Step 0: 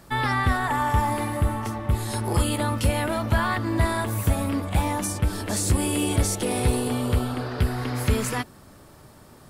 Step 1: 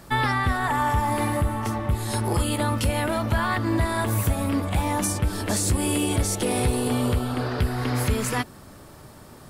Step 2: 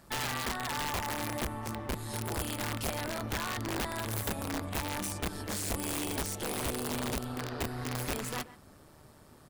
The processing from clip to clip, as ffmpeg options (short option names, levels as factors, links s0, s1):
-af "alimiter=limit=0.141:level=0:latency=1:release=277,volume=1.5"
-filter_complex "[0:a]asplit=2[s0][s1];[s1]adelay=130,highpass=300,lowpass=3400,asoftclip=type=hard:threshold=0.0668,volume=0.178[s2];[s0][s2]amix=inputs=2:normalize=0,tremolo=f=150:d=0.519,aeval=exprs='(mod(8.41*val(0)+1,2)-1)/8.41':c=same,volume=0.376"